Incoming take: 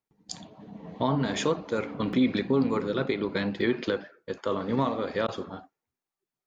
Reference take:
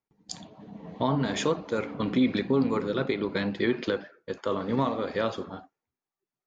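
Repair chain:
repair the gap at 0:02.13/0:03.61, 1 ms
repair the gap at 0:05.27, 11 ms

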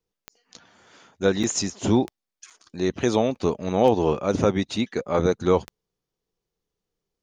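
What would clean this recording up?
click removal
repair the gap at 0:01.43/0:02.50/0:03.35, 6.3 ms

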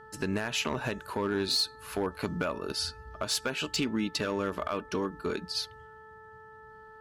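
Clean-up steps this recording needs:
clipped peaks rebuilt −21.5 dBFS
hum removal 437.2 Hz, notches 4

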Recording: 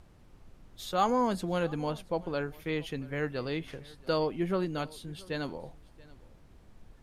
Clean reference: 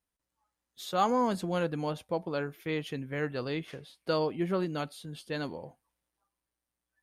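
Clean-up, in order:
noise reduction from a noise print 30 dB
echo removal 680 ms −23 dB

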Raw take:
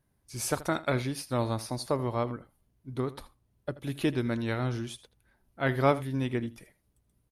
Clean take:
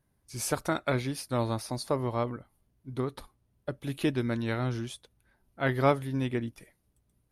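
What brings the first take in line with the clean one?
echo removal 81 ms −17.5 dB

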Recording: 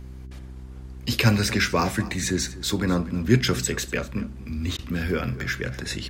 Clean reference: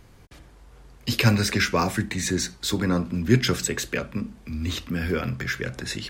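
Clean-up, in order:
hum removal 64.2 Hz, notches 6
repair the gap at 0:04.77, 16 ms
echo removal 242 ms −17.5 dB

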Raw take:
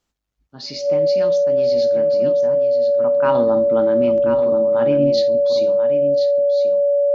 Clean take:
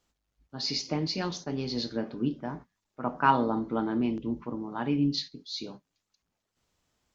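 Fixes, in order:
notch filter 570 Hz, Q 30
echo removal 1,035 ms −8.5 dB
level correction −5 dB, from 0:03.35

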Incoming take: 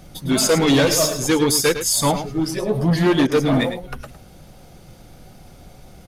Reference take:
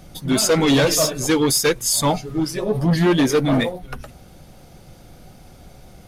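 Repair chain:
click removal
repair the gap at 0:03.27, 44 ms
echo removal 106 ms −10.5 dB

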